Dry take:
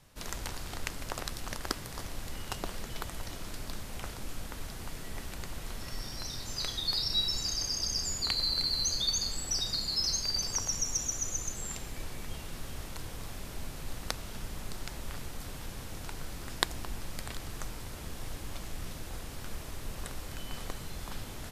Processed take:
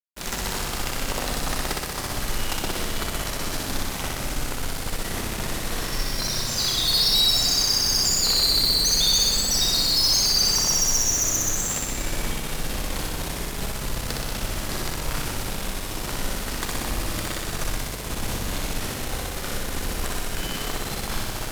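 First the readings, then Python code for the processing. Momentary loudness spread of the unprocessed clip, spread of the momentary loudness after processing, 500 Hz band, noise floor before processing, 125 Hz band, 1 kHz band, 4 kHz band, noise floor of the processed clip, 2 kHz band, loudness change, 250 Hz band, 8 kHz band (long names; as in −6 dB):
15 LU, 13 LU, +13.0 dB, −43 dBFS, +10.0 dB, +12.0 dB, +11.5 dB, −31 dBFS, +12.5 dB, +12.0 dB, +12.5 dB, +11.5 dB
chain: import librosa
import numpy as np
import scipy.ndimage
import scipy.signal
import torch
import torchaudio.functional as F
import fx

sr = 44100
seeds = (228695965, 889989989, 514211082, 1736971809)

y = fx.peak_eq(x, sr, hz=73.0, db=-5.0, octaves=1.5)
y = fx.fuzz(y, sr, gain_db=34.0, gate_db=-43.0)
y = fx.room_flutter(y, sr, wall_m=10.6, rt60_s=1.5)
y = F.gain(torch.from_numpy(y), -7.0).numpy()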